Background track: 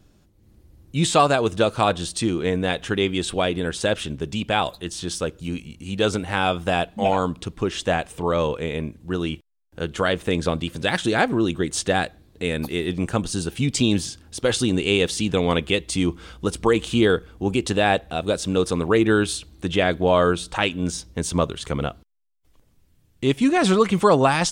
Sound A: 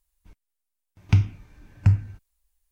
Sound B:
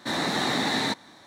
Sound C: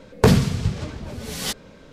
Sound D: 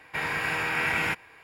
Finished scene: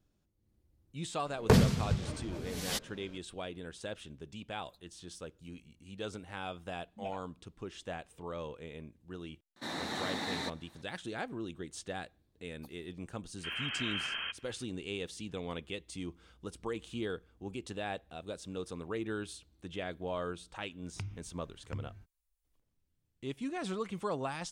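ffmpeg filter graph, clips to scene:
ffmpeg -i bed.wav -i cue0.wav -i cue1.wav -i cue2.wav -filter_complex "[2:a]asplit=2[link_01][link_02];[0:a]volume=-19.5dB[link_03];[link_02]lowpass=frequency=2900:width_type=q:width=0.5098,lowpass=frequency=2900:width_type=q:width=0.6013,lowpass=frequency=2900:width_type=q:width=0.9,lowpass=frequency=2900:width_type=q:width=2.563,afreqshift=-3400[link_04];[1:a]acompressor=threshold=-25dB:ratio=6:attack=3.2:release=140:knee=1:detection=peak[link_05];[3:a]atrim=end=1.92,asetpts=PTS-STARTPTS,volume=-8.5dB,afade=type=in:duration=0.004:curve=hsin,afade=type=out:start_time=1.916:duration=0.004:curve=hsin,adelay=1260[link_06];[link_01]atrim=end=1.26,asetpts=PTS-STARTPTS,volume=-11.5dB,afade=type=in:duration=0.004:curve=hsin,afade=type=out:start_time=1.256:duration=0.004:curve=hsin,adelay=9560[link_07];[link_04]atrim=end=1.26,asetpts=PTS-STARTPTS,volume=-10.5dB,afade=type=in:duration=0.004:curve=hsin,afade=type=out:start_time=1.256:duration=0.004:curve=hsin,adelay=13380[link_08];[link_05]atrim=end=2.71,asetpts=PTS-STARTPTS,volume=-12dB,afade=type=in:duration=0.004:curve=hsin,afade=type=out:start_time=2.706:duration=0.004:curve=hsin,adelay=19870[link_09];[link_03][link_06][link_07][link_08][link_09]amix=inputs=5:normalize=0" out.wav

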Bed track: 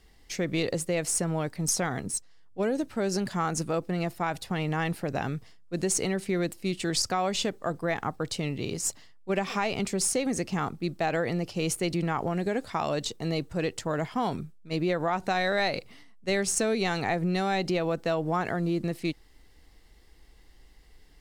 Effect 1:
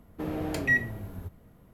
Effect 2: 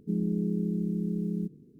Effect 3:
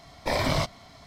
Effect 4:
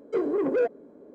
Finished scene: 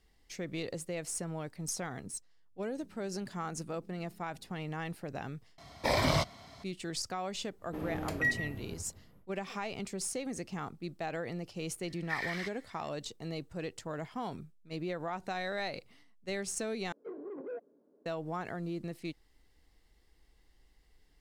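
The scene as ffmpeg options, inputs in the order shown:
ffmpeg -i bed.wav -i cue0.wav -i cue1.wav -i cue2.wav -i cue3.wav -filter_complex "[3:a]asplit=2[link_01][link_02];[0:a]volume=-10dB[link_03];[2:a]acompressor=threshold=-50dB:ratio=6:attack=3.2:release=140:knee=1:detection=peak[link_04];[link_01]highpass=46[link_05];[1:a]aecho=1:1:163:0.251[link_06];[link_02]highpass=frequency=1800:width_type=q:width=10[link_07];[4:a]highpass=150,lowpass=2000[link_08];[link_03]asplit=3[link_09][link_10][link_11];[link_09]atrim=end=5.584[link_12];[link_05]atrim=end=1.06,asetpts=PTS-STARTPTS,volume=-2.5dB[link_13];[link_10]atrim=start=6.636:end=16.924[link_14];[link_08]atrim=end=1.14,asetpts=PTS-STARTPTS,volume=-17.5dB[link_15];[link_11]atrim=start=18.056[link_16];[link_04]atrim=end=1.79,asetpts=PTS-STARTPTS,volume=-9dB,afade=type=in:duration=0.004:curve=hsin,afade=type=out:start_time=1.786:duration=0.004:curve=hsin,adelay=2770[link_17];[link_06]atrim=end=1.73,asetpts=PTS-STARTPTS,volume=-6dB,afade=type=in:duration=0.1,afade=type=out:start_time=1.63:duration=0.1,adelay=332514S[link_18];[link_07]atrim=end=1.06,asetpts=PTS-STARTPTS,volume=-16.5dB,afade=type=in:duration=0.004:curve=hsin,afade=type=out:start_time=1.056:duration=0.004:curve=hsin,adelay=11830[link_19];[link_12][link_13]acrossfade=duration=0.004:curve1=hsin:curve2=hsin[link_20];[link_20][link_14]acrossfade=duration=0.004:curve1=hsin:curve2=hsin[link_21];[link_21][link_15]acrossfade=duration=0.004:curve1=hsin:curve2=hsin[link_22];[link_22][link_16]acrossfade=duration=0.004:curve1=hsin:curve2=hsin[link_23];[link_23][link_17][link_18][link_19]amix=inputs=4:normalize=0" out.wav

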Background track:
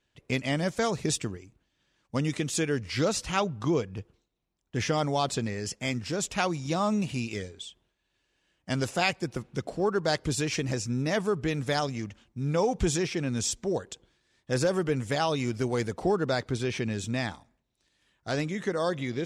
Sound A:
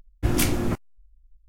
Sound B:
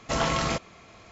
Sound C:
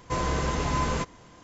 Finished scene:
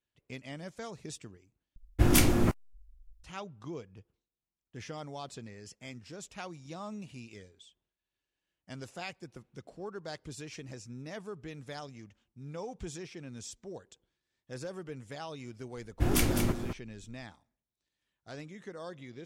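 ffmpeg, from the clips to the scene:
ffmpeg -i bed.wav -i cue0.wav -filter_complex "[1:a]asplit=2[link_01][link_02];[0:a]volume=-15dB[link_03];[link_02]aecho=1:1:208:0.447[link_04];[link_03]asplit=2[link_05][link_06];[link_05]atrim=end=1.764[link_07];[link_01]atrim=end=1.48,asetpts=PTS-STARTPTS,volume=-0.5dB[link_08];[link_06]atrim=start=3.236[link_09];[link_04]atrim=end=1.48,asetpts=PTS-STARTPTS,volume=-5dB,afade=type=in:duration=0.004:curve=hsin,afade=type=out:start_time=1.476:duration=0.004:curve=hsin,adelay=15770[link_10];[link_07][link_08]acrossfade=duration=0.004:curve1=hsin:curve2=hsin[link_11];[link_11][link_09]acrossfade=duration=0.004:curve1=hsin:curve2=hsin[link_12];[link_12][link_10]amix=inputs=2:normalize=0" out.wav

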